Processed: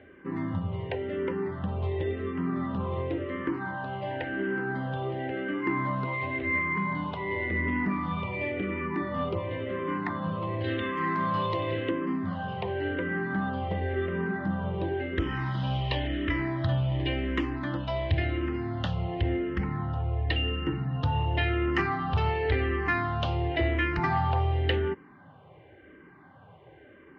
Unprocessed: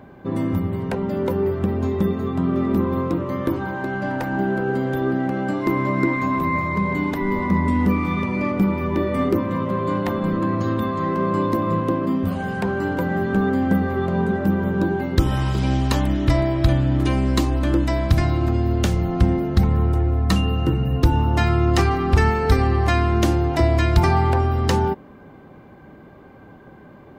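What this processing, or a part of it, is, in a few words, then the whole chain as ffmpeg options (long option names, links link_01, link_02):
barber-pole phaser into a guitar amplifier: -filter_complex "[0:a]asplit=2[link_01][link_02];[link_02]afreqshift=-0.93[link_03];[link_01][link_03]amix=inputs=2:normalize=1,asoftclip=type=tanh:threshold=-10dB,highpass=85,equalizer=frequency=87:width_type=q:width=4:gain=4,equalizer=frequency=220:width_type=q:width=4:gain=-9,equalizer=frequency=1900:width_type=q:width=4:gain=8,equalizer=frequency=3000:width_type=q:width=4:gain=8,lowpass=frequency=3700:width=0.5412,lowpass=frequency=3700:width=1.3066,asettb=1/sr,asplit=3[link_04][link_05][link_06];[link_04]atrim=end=10.644[link_07];[link_05]atrim=start=10.64:end=11.91,asetpts=PTS-STARTPTS,afade=type=in:duration=0.004:curve=qsin,afade=type=out:start_time=1.266:duration=0.004:curve=qsin,highshelf=frequency=2200:gain=11.5[link_08];[link_06]atrim=start=11.906[link_09];[link_07][link_08]acrossfade=duration=0.004:curve1=hsin:curve2=qsin[link_10];[link_10][link_09]acrossfade=duration=0.004:curve1=qsin:curve2=hsin,volume=-4.5dB"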